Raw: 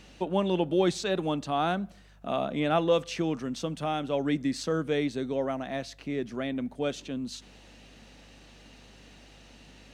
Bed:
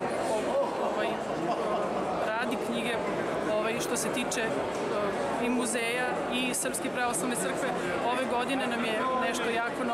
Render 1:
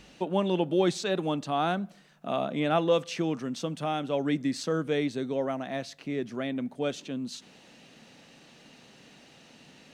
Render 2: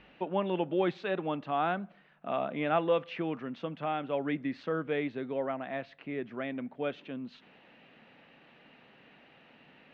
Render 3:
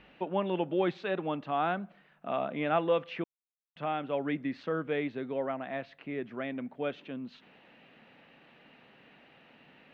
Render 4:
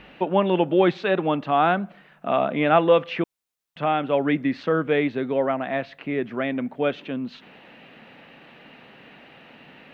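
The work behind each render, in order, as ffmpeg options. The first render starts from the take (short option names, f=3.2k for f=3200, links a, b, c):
-af "bandreject=f=50:t=h:w=4,bandreject=f=100:t=h:w=4"
-af "lowpass=f=2.7k:w=0.5412,lowpass=f=2.7k:w=1.3066,lowshelf=f=450:g=-7.5"
-filter_complex "[0:a]asplit=3[a][b][c];[a]atrim=end=3.24,asetpts=PTS-STARTPTS,afade=t=out:st=3.236:d=0.004:c=hsin[d];[b]atrim=start=3.24:end=3.76,asetpts=PTS-STARTPTS,volume=0[e];[c]atrim=start=3.76,asetpts=PTS-STARTPTS,afade=t=in:d=0.004:c=hsin[f];[d][e][f]concat=n=3:v=0:a=1"
-af "volume=10.5dB"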